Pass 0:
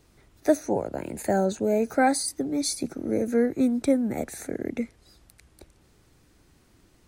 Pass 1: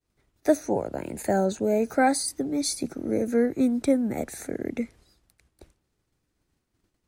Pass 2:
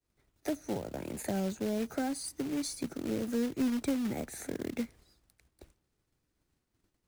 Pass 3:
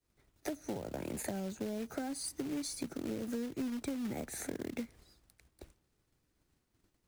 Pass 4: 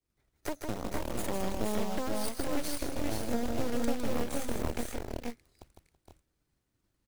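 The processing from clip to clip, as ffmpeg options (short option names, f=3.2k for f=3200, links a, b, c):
-af "agate=range=-33dB:threshold=-48dB:ratio=3:detection=peak"
-filter_complex "[0:a]acrossover=split=250[a][b];[b]acompressor=threshold=-31dB:ratio=10[c];[a][c]amix=inputs=2:normalize=0,acrusher=bits=3:mode=log:mix=0:aa=0.000001,volume=-4dB"
-af "acompressor=threshold=-37dB:ratio=6,volume=2dB"
-af "aeval=exprs='0.075*(cos(1*acos(clip(val(0)/0.075,-1,1)))-cos(1*PI/2))+0.00841*(cos(5*acos(clip(val(0)/0.075,-1,1)))-cos(5*PI/2))+0.0237*(cos(6*acos(clip(val(0)/0.075,-1,1)))-cos(6*PI/2))+0.0106*(cos(7*acos(clip(val(0)/0.075,-1,1)))-cos(7*PI/2))':c=same,aphaser=in_gain=1:out_gain=1:delay=2.4:decay=0.22:speed=1.2:type=triangular,aecho=1:1:156|330|465|490:0.562|0.106|0.562|0.562,volume=-1dB"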